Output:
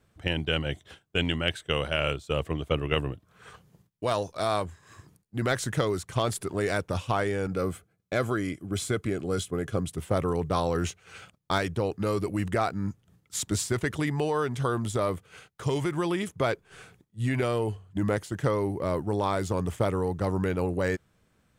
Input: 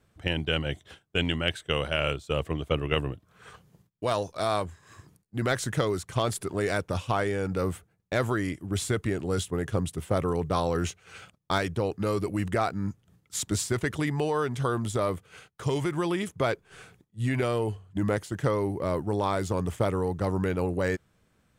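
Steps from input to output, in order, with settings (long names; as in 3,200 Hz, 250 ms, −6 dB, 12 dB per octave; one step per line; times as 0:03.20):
0:07.47–0:09.89: notch comb filter 910 Hz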